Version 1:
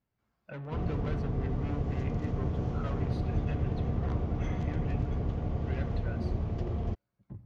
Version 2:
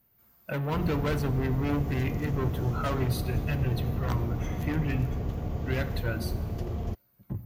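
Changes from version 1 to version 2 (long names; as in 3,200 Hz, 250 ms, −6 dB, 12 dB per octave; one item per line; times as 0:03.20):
speech +10.0 dB
master: remove high-frequency loss of the air 140 metres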